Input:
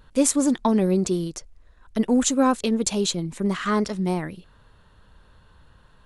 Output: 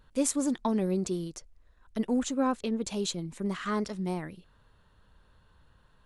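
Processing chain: 2.19–2.90 s: treble shelf 5.4 kHz -10.5 dB; trim -8 dB

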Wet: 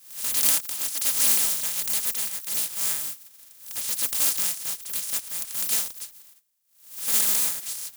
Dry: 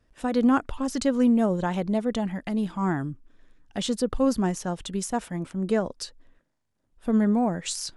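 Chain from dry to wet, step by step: spectral contrast reduction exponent 0.13; pre-emphasis filter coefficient 0.8; comb of notches 370 Hz; swell ahead of each attack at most 110 dB/s; trim +1 dB

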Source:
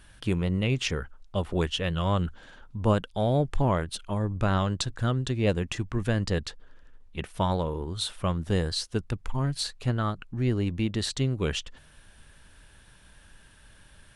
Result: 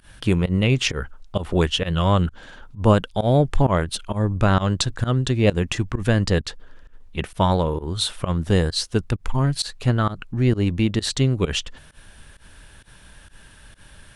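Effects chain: volume shaper 131 bpm, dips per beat 1, -22 dB, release 106 ms; trim +7.5 dB

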